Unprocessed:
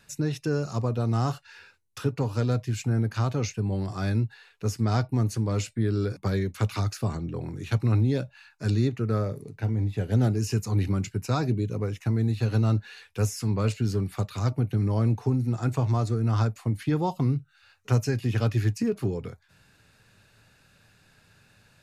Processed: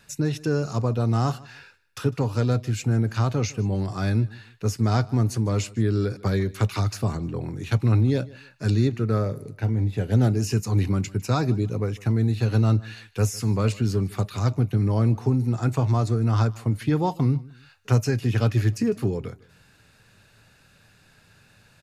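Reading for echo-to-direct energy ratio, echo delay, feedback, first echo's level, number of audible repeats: -21.5 dB, 0.153 s, 31%, -22.0 dB, 2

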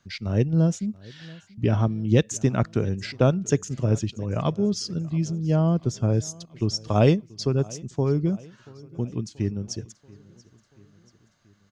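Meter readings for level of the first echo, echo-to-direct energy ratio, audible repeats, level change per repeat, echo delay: -23.0 dB, -21.5 dB, 3, -5.0 dB, 0.683 s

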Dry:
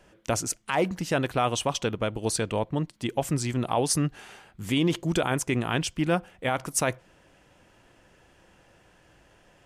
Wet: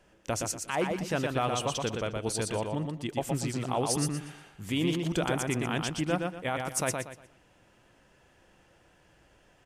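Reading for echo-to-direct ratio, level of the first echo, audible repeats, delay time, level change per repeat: -3.5 dB, -4.0 dB, 3, 0.119 s, -10.5 dB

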